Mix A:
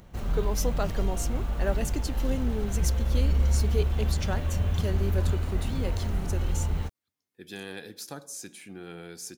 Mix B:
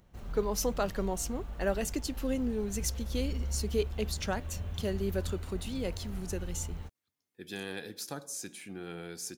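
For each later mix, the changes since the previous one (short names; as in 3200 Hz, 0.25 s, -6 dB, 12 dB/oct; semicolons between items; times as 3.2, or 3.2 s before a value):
background -11.5 dB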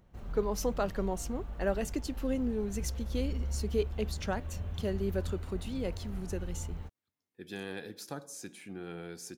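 master: add high shelf 2800 Hz -7 dB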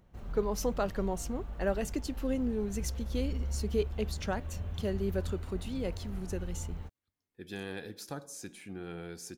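speech: remove HPF 120 Hz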